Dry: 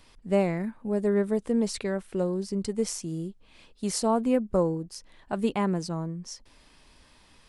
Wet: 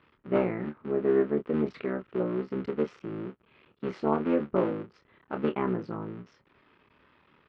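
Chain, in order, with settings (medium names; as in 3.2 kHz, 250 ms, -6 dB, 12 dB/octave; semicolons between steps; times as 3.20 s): cycle switcher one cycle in 3, muted; cabinet simulation 120–2800 Hz, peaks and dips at 390 Hz +6 dB, 720 Hz -4 dB, 1.3 kHz +7 dB; doubling 27 ms -7.5 dB; trim -2.5 dB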